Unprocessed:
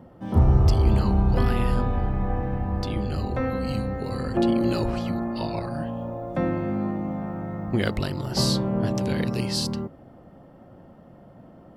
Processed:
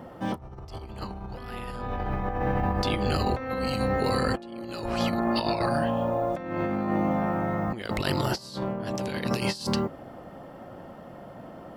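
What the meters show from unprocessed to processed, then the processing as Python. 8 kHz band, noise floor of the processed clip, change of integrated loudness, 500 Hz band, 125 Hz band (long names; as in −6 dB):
−5.5 dB, −45 dBFS, −3.5 dB, 0.0 dB, −7.5 dB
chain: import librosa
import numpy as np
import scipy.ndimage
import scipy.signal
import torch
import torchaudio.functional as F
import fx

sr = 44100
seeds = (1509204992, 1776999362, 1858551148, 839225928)

y = fx.low_shelf(x, sr, hz=380.0, db=-11.0)
y = fx.over_compress(y, sr, threshold_db=-35.0, ratio=-0.5)
y = y * librosa.db_to_amplitude(7.0)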